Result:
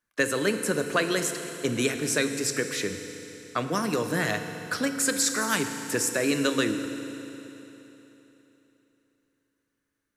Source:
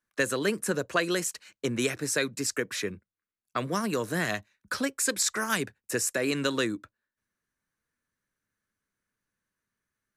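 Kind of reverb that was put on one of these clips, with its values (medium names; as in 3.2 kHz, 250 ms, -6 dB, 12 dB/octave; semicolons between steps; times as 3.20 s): FDN reverb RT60 3.5 s, high-frequency decay 0.95×, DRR 6 dB; trim +1.5 dB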